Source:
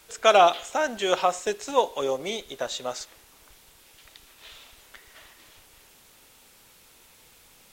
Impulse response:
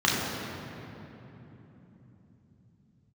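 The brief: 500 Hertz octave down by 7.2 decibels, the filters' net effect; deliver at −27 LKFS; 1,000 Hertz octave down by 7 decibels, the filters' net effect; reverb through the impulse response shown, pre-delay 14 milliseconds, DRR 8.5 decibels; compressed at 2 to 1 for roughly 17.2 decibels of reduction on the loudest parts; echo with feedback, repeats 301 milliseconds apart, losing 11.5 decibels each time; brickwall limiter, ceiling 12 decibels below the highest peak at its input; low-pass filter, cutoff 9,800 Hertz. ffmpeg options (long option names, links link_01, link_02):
-filter_complex "[0:a]lowpass=9800,equalizer=frequency=500:width_type=o:gain=-7,equalizer=frequency=1000:width_type=o:gain=-7,acompressor=threshold=-51dB:ratio=2,alimiter=level_in=12.5dB:limit=-24dB:level=0:latency=1,volume=-12.5dB,aecho=1:1:301|602|903:0.266|0.0718|0.0194,asplit=2[link_01][link_02];[1:a]atrim=start_sample=2205,adelay=14[link_03];[link_02][link_03]afir=irnorm=-1:irlink=0,volume=-25dB[link_04];[link_01][link_04]amix=inputs=2:normalize=0,volume=22dB"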